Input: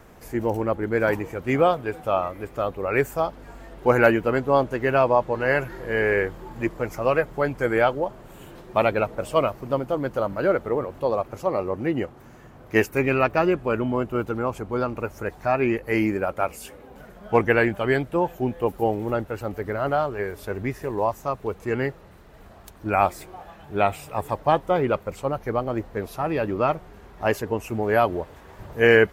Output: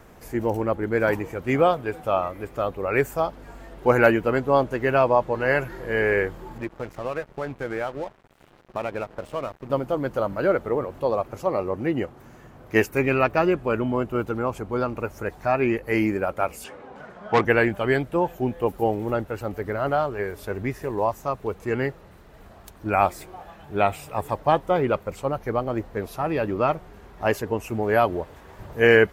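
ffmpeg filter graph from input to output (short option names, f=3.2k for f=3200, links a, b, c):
-filter_complex "[0:a]asettb=1/sr,asplit=3[a][b][c];[a]atrim=end=6.584[d];[b]atrim=start=6.58:end=9.7,asetpts=PTS-STARTPTS,afade=t=in:d=0.004:c=qsin,afade=t=out:st=3.116:d=0.004:c=qsin,highshelf=f=4.5k:g=-10.5,acompressor=threshold=-26dB:ratio=2.5:attack=3.2:release=140:knee=1:detection=peak,aeval=exprs='sgn(val(0))*max(abs(val(0))-0.00891,0)':c=same[e];[c]atrim=start=9.696[f];[d][e]acrossfade=d=0.004:c1=hsin:c2=qsin[g];[g][f]acrossfade=d=0.004:c1=qsin:c2=hsin,asettb=1/sr,asplit=3[h][i][j];[h]atrim=end=16.644[k];[i]atrim=start=16.64:end=17.45,asetpts=PTS-STARTPTS,afade=t=in:d=0.004:c=qsin,afade=t=out:st=0.806:d=0.004:c=qsin,equalizer=f=1.1k:t=o:w=1.8:g=7,asoftclip=type=hard:threshold=-13dB,highpass=100,lowpass=6.1k[l];[j]atrim=start=17.446[m];[k][l]acrossfade=d=0.004:c1=hsin:c2=qsin[n];[n][m]acrossfade=d=0.004:c1=qsin:c2=hsin"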